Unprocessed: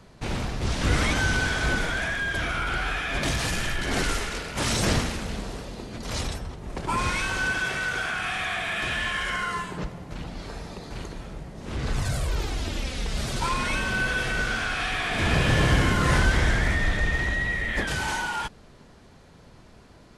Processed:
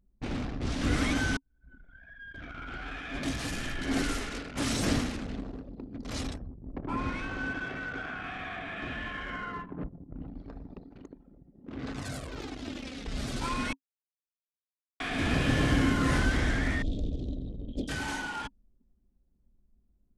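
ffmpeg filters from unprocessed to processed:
-filter_complex "[0:a]asettb=1/sr,asplit=3[a][b][c];[a]atrim=end=4.674[d];[b]atrim=start=4.67:end=5.13,asetpts=PTS-STARTPTS,afade=t=in:d=0.004:c=qsin,afade=t=out:st=0.456:d=0.004:c=qsin,aeval=exprs='sgn(val(0))*max(abs(val(0))-0.0015,0)':c=same[e];[c]atrim=start=5.126[f];[d][e]acrossfade=d=0.004:c1=hsin:c2=qsin[g];[g][f]acrossfade=d=0.004:c1=qsin:c2=hsin,asettb=1/sr,asplit=3[h][i][j];[h]atrim=end=6.464[k];[i]atrim=start=6.46:end=10.22,asetpts=PTS-STARTPTS,afade=t=in:d=0.004:c=qsin,afade=t=out:st=3.756:d=0.004:c=qsin,lowpass=f=1.6k:p=1[l];[j]atrim=start=10.216[m];[k][l]acrossfade=d=0.004:c1=hsin:c2=qsin[n];[n][m]acrossfade=d=0.004:c1=qsin:c2=hsin,asettb=1/sr,asplit=3[o][p][q];[o]atrim=end=10.884[r];[p]atrim=start=10.88:end=13.07,asetpts=PTS-STARTPTS,afade=t=in:d=0.004:c=qsin,afade=t=out:st=2.186:d=0.004:c=qsin,highpass=f=190:p=1[s];[q]atrim=start=13.066[t];[r][s]acrossfade=d=0.004:c1=hsin:c2=qsin[u];[u][t]acrossfade=d=0.004:c1=qsin:c2=hsin,asettb=1/sr,asplit=3[v][w][x];[v]atrim=end=16.824[y];[w]atrim=start=16.82:end=17.89,asetpts=PTS-STARTPTS,afade=t=in:d=0.004:c=qsin,afade=t=out:st=1.066:d=0.004:c=qsin,asuperstop=centerf=1400:order=8:qfactor=0.53[z];[x]atrim=start=17.886[aa];[y][z]acrossfade=d=0.004:c1=hsin:c2=qsin[ab];[ab][aa]acrossfade=d=0.004:c1=qsin:c2=hsin,asplit=4[ac][ad][ae][af];[ac]atrim=end=1.37,asetpts=PTS-STARTPTS,afade=t=out:st=1.366:d=0.004:c=hsin[ag];[ad]atrim=start=1.37:end=13.73,asetpts=PTS-STARTPTS,afade=t=in:d=2.67,afade=t=out:st=12.356:d=0.004:c=hsin[ah];[ae]atrim=start=13.73:end=15,asetpts=PTS-STARTPTS,volume=0[ai];[af]atrim=start=15,asetpts=PTS-STARTPTS,afade=t=in:d=0.004:c=hsin[aj];[ag][ah][ai][aj]concat=n=4:v=0:a=1,anlmdn=6.31,equalizer=f=270:w=4.3:g=13,bandreject=f=940:w=15,volume=-6.5dB"

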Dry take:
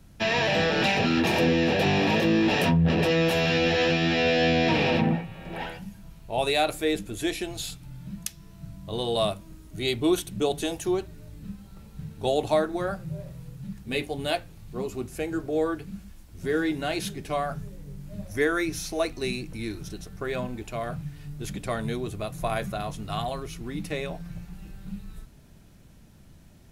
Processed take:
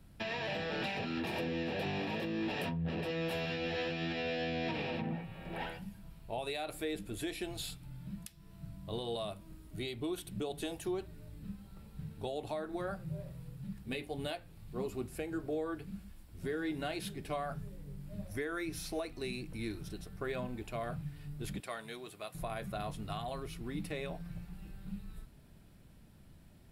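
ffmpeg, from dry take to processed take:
-filter_complex "[0:a]asettb=1/sr,asplit=3[a][b][c];[a]atrim=end=21.604[d];[b]atrim=start=21.6:end=22.35,asetpts=PTS-STARTPTS,afade=t=in:d=0.004:c=qsin,afade=t=out:st=0.746:d=0.004:c=qsin,highpass=f=1k:p=1[e];[c]atrim=start=22.346[f];[d][e]acrossfade=d=0.004:c1=hsin:c2=qsin[g];[g][f]acrossfade=d=0.004:c1=qsin:c2=hsin,equalizer=f=6.3k:w=3.7:g=-9,acompressor=threshold=-24dB:ratio=6,alimiter=limit=-22dB:level=0:latency=1:release=286,volume=-6dB"

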